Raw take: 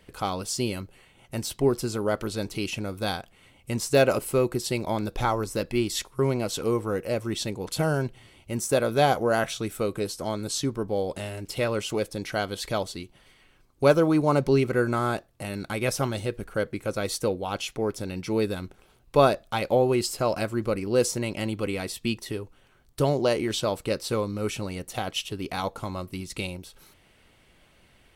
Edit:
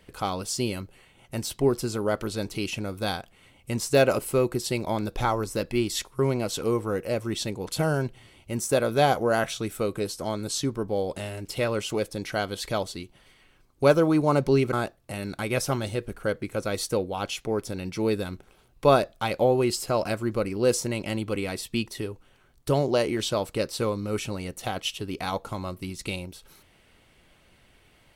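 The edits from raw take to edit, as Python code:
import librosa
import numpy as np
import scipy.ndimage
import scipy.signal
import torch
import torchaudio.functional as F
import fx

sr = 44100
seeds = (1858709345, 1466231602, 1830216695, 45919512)

y = fx.edit(x, sr, fx.cut(start_s=14.73, length_s=0.31), tone=tone)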